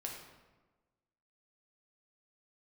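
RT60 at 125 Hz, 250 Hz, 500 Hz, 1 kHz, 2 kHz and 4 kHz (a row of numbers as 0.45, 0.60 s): 1.4, 1.4, 1.3, 1.2, 1.0, 0.80 s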